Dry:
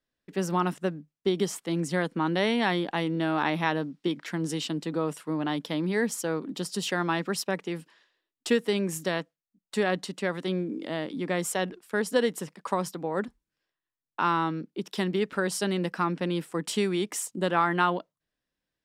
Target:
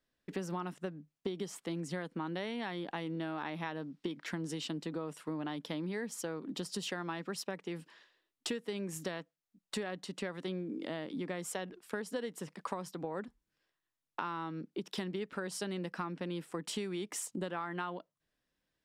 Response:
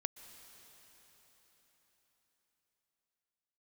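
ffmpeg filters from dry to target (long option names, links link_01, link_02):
-af "highshelf=frequency=10000:gain=-5.5,acompressor=threshold=-38dB:ratio=6,volume=2dB"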